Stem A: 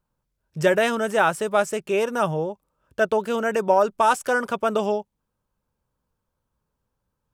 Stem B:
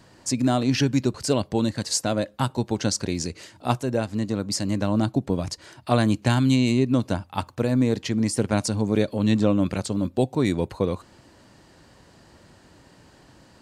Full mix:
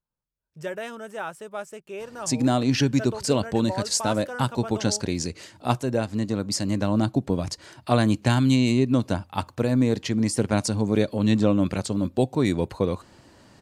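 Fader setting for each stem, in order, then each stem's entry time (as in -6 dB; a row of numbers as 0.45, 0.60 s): -13.5, 0.0 dB; 0.00, 2.00 s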